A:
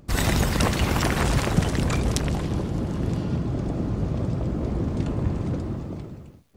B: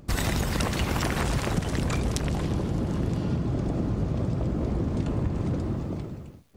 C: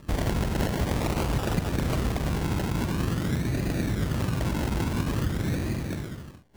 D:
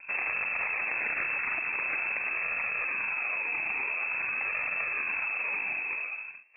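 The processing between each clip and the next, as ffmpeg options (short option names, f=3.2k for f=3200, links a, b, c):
-af "acompressor=threshold=-24dB:ratio=6,volume=1.5dB"
-af "acrusher=samples=29:mix=1:aa=0.000001:lfo=1:lforange=17.4:lforate=0.48"
-filter_complex "[0:a]acrossover=split=820[a][b];[a]asoftclip=type=hard:threshold=-30.5dB[c];[c][b]amix=inputs=2:normalize=0,lowpass=f=2.3k:t=q:w=0.5098,lowpass=f=2.3k:t=q:w=0.6013,lowpass=f=2.3k:t=q:w=0.9,lowpass=f=2.3k:t=q:w=2.563,afreqshift=-2700"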